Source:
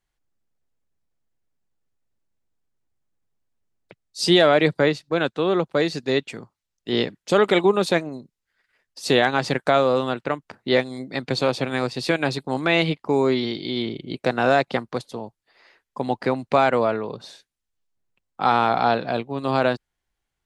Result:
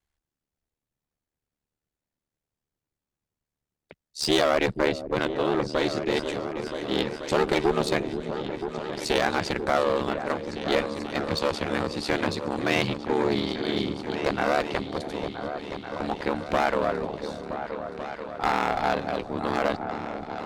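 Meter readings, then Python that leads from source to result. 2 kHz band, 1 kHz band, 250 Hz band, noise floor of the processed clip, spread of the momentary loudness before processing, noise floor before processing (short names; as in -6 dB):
-4.0 dB, -4.0 dB, -4.0 dB, under -85 dBFS, 13 LU, -82 dBFS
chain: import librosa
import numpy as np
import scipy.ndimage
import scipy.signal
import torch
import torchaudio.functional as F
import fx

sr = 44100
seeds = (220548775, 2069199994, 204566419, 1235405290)

y = fx.clip_asym(x, sr, top_db=-21.0, bottom_db=-9.5)
y = y * np.sin(2.0 * np.pi * 37.0 * np.arange(len(y)) / sr)
y = fx.echo_opening(y, sr, ms=486, hz=400, octaves=2, feedback_pct=70, wet_db=-6)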